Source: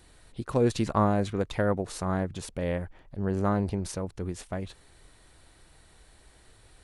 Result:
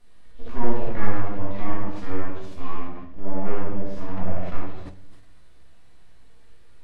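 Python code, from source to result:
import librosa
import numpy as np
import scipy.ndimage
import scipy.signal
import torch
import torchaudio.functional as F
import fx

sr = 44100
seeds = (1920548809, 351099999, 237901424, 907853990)

y = fx.lowpass(x, sr, hz=3700.0, slope=6)
y = fx.room_early_taps(y, sr, ms=(15, 76), db=(-6.0, -5.0))
y = fx.spec_box(y, sr, start_s=4.08, length_s=0.51, low_hz=210.0, high_hz=2400.0, gain_db=12)
y = np.abs(y)
y = fx.hpss(y, sr, part='percussive', gain_db=-12)
y = fx.env_lowpass_down(y, sr, base_hz=2100.0, full_db=-24.5)
y = fx.room_shoebox(y, sr, seeds[0], volume_m3=240.0, walls='mixed', distance_m=1.8)
y = fx.sustainer(y, sr, db_per_s=97.0)
y = F.gain(torch.from_numpy(y), -4.0).numpy()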